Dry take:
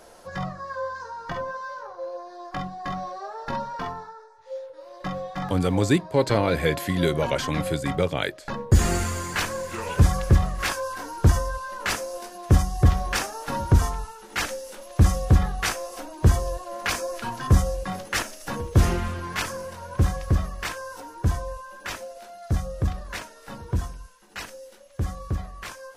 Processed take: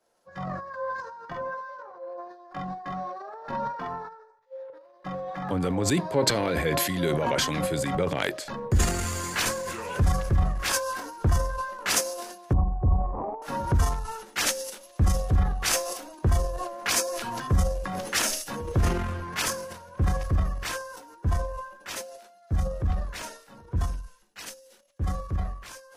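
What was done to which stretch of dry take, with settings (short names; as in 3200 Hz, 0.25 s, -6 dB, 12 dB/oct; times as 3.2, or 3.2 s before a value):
12.53–13.42 steep low-pass 1100 Hz 96 dB/oct
whole clip: transient shaper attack -1 dB, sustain +11 dB; compressor 4:1, threshold -23 dBFS; three-band expander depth 100%; gain -1 dB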